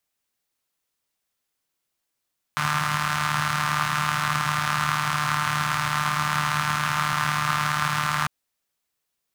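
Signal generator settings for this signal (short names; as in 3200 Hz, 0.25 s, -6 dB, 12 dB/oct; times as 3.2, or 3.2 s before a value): four-cylinder engine model, steady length 5.70 s, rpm 4500, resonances 140/1200 Hz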